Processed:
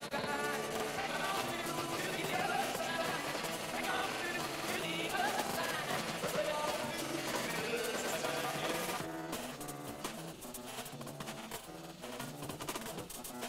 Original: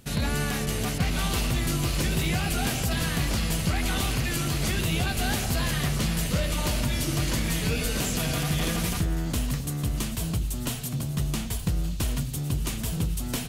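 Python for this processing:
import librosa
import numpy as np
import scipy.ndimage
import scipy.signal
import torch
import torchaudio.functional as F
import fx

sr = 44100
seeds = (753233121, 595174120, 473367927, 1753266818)

y = scipy.signal.sosfilt(scipy.signal.butter(2, 690.0, 'highpass', fs=sr, output='sos'), x)
y = fx.cheby_harmonics(y, sr, harmonics=(8,), levels_db=(-34,), full_scale_db=-17.0)
y = fx.tilt_shelf(y, sr, db=8.5, hz=1300.0)
y = fx.granulator(y, sr, seeds[0], grain_ms=100.0, per_s=20.0, spray_ms=100.0, spread_st=0)
y = F.gain(torch.from_numpy(y), -1.5).numpy()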